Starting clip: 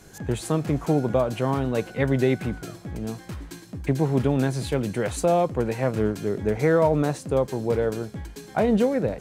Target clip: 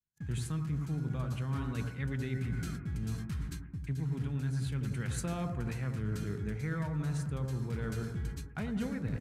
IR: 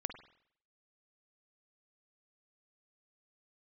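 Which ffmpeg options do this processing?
-filter_complex "[0:a]agate=range=0.00447:threshold=0.0126:ratio=16:detection=peak,firequalizer=gain_entry='entry(150,0);entry(260,-10);entry(570,-22);entry(1300,-5)':delay=0.05:min_phase=1[s0];[1:a]atrim=start_sample=2205,asetrate=24255,aresample=44100[s1];[s0][s1]afir=irnorm=-1:irlink=0,areverse,acompressor=threshold=0.0251:ratio=6,areverse"

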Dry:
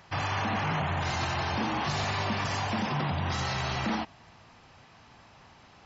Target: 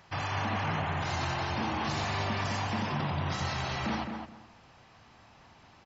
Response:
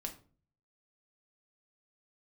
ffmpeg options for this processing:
-filter_complex "[0:a]asplit=2[s0][s1];[s1]adelay=212,lowpass=f=1900:p=1,volume=0.562,asplit=2[s2][s3];[s3]adelay=212,lowpass=f=1900:p=1,volume=0.22,asplit=2[s4][s5];[s5]adelay=212,lowpass=f=1900:p=1,volume=0.22[s6];[s0][s2][s4][s6]amix=inputs=4:normalize=0,volume=0.708"

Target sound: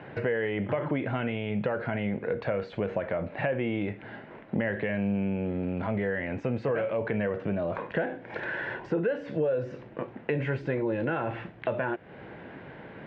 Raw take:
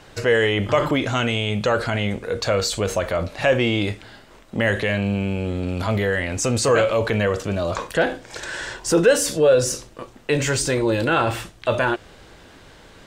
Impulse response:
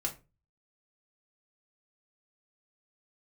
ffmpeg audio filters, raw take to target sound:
-af "acompressor=threshold=0.0251:ratio=4,highpass=130,equalizer=f=140:t=q:w=4:g=5,equalizer=f=200:t=q:w=4:g=3,equalizer=f=1200:t=q:w=4:g=-8,lowpass=f=2200:w=0.5412,lowpass=f=2200:w=1.3066,volume=1.58"

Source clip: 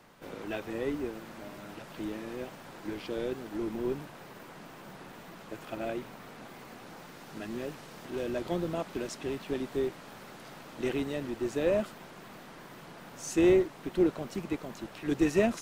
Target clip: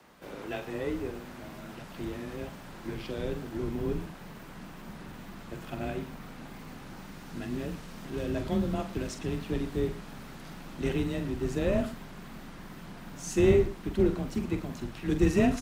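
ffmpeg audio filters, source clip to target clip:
-af "afreqshift=22,asubboost=boost=4.5:cutoff=200,aecho=1:1:45|114:0.355|0.15"

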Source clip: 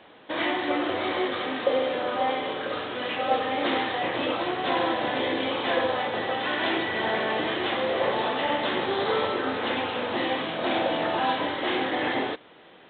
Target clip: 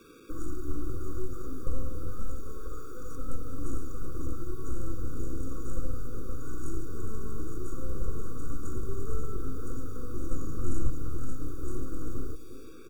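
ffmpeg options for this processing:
-filter_complex "[0:a]asettb=1/sr,asplit=3[s0][s1][s2];[s0]atrim=end=2.114[s3];[s1]atrim=start=2.11:end=3.16,asetpts=PTS-STARTPTS,afade=t=in:d=0.004:c=qsin,afade=t=out:st=1.046:d=0.004:c=qsin,bass=f=250:g=-14,treble=f=4000:g=8[s4];[s2]atrim=start=3.156[s5];[s3][s4]acrossfade=d=0.004:c1=hsin:c2=qsin[s6];[s6][s5]acrossfade=d=0.004:c1=qsin:c2=hsin,aeval=exprs='0.355*(cos(1*acos(clip(val(0)/0.355,-1,1)))-cos(1*PI/2))+0.00631*(cos(3*acos(clip(val(0)/0.355,-1,1)))-cos(3*PI/2))+0.00282*(cos(6*acos(clip(val(0)/0.355,-1,1)))-cos(6*PI/2))+0.00447*(cos(7*acos(clip(val(0)/0.355,-1,1)))-cos(7*PI/2))+0.0447*(cos(8*acos(clip(val(0)/0.355,-1,1)))-cos(8*PI/2))':c=same,asuperstop=centerf=3100:order=12:qfactor=0.55,lowshelf=f=70:g=6.5,aecho=1:1:2.9:0.38,asplit=2[s7][s8];[s8]adelay=357,lowpass=f=1400:p=1,volume=0.126,asplit=2[s9][s10];[s10]adelay=357,lowpass=f=1400:p=1,volume=0.42,asplit=2[s11][s12];[s12]adelay=357,lowpass=f=1400:p=1,volume=0.42[s13];[s7][s9][s11][s13]amix=inputs=4:normalize=0,asettb=1/sr,asplit=3[s14][s15][s16];[s14]atrim=end=10.314[s17];[s15]atrim=start=10.31:end=10.9,asetpts=PTS-STARTPTS,afade=t=in:d=0.004:c=qsin,afade=t=out:st=0.586:d=0.004:c=qsin,acontrast=26[s18];[s16]atrim=start=10.896[s19];[s17][s18]acrossfade=d=0.004:c1=hsin:c2=qsin[s20];[s20][s19]acrossfade=d=0.004:c1=qsin:c2=hsin,acrusher=bits=8:mix=0:aa=0.000001,acrossover=split=160|3000[s21][s22][s23];[s22]acompressor=threshold=0.00562:ratio=4[s24];[s21][s24][s23]amix=inputs=3:normalize=0,afftfilt=real='re*eq(mod(floor(b*sr/1024/550),2),0)':imag='im*eq(mod(floor(b*sr/1024/550),2),0)':win_size=1024:overlap=0.75,volume=1.26"

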